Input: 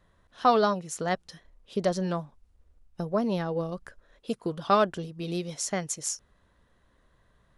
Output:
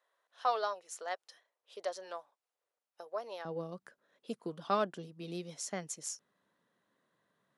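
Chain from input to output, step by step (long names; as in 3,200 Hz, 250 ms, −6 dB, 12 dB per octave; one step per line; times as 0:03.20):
high-pass filter 500 Hz 24 dB per octave, from 0:03.45 160 Hz
level −9 dB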